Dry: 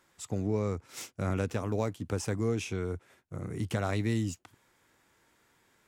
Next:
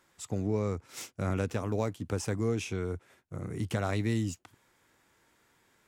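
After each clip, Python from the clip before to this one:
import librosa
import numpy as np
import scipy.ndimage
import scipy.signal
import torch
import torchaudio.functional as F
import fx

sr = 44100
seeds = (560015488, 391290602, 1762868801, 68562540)

y = x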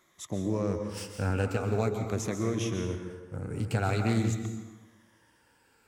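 y = fx.spec_ripple(x, sr, per_octave=1.2, drift_hz=-0.45, depth_db=10)
y = fx.rev_plate(y, sr, seeds[0], rt60_s=1.2, hf_ratio=0.65, predelay_ms=115, drr_db=5.0)
y = fx.doppler_dist(y, sr, depth_ms=0.18)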